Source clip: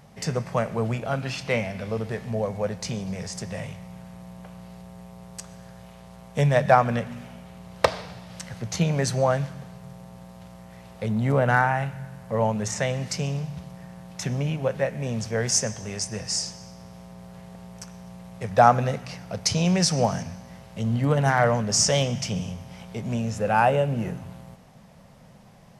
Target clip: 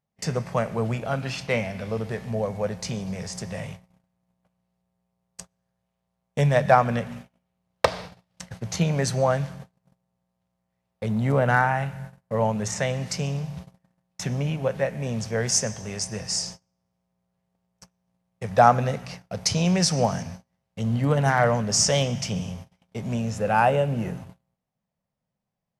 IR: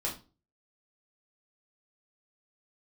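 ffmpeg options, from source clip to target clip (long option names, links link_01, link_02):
-af "agate=range=-33dB:threshold=-37dB:ratio=16:detection=peak"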